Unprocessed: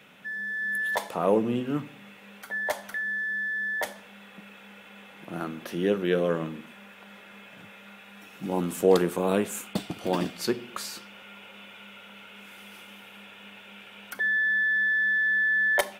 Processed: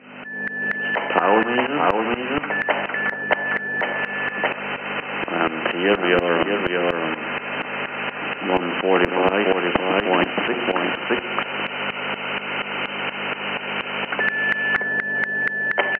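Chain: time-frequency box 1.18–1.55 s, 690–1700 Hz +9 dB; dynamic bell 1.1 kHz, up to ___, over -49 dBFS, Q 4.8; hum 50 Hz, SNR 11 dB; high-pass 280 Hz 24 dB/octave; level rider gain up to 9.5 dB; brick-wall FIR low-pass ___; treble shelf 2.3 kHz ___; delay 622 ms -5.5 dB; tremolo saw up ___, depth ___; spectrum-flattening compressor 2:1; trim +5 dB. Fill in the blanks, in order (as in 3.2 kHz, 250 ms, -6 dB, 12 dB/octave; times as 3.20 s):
-6 dB, 3.1 kHz, -6 dB, 4.2 Hz, 85%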